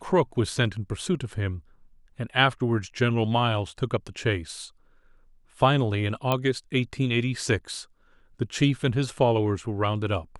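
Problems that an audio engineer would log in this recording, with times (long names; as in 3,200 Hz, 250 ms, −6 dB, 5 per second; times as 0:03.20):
0:06.32: click −11 dBFS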